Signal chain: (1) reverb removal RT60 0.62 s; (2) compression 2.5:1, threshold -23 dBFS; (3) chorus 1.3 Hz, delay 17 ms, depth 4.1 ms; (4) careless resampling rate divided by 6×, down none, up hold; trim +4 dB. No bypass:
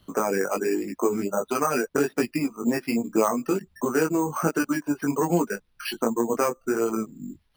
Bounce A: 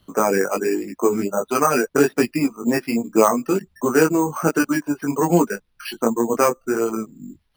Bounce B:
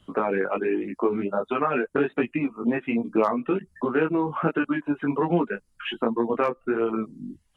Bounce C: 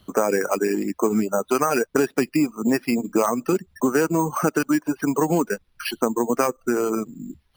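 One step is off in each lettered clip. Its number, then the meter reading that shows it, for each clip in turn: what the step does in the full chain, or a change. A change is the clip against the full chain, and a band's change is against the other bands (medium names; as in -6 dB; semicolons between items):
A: 2, mean gain reduction 4.0 dB; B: 4, 4 kHz band -2.0 dB; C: 3, loudness change +3.0 LU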